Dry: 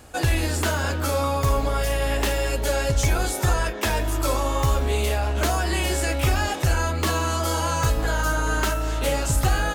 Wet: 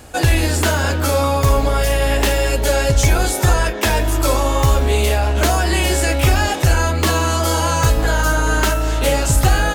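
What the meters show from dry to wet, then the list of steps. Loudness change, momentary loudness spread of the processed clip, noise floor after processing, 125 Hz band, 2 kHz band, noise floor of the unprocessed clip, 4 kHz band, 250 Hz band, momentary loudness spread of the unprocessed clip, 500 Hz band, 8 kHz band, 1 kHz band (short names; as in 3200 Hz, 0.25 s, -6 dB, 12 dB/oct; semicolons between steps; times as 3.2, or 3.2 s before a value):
+7.0 dB, 2 LU, -20 dBFS, +7.0 dB, +6.5 dB, -27 dBFS, +7.0 dB, +7.0 dB, 2 LU, +7.0 dB, +7.0 dB, +6.0 dB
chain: bell 1200 Hz -2.5 dB 0.4 oct; gain +7 dB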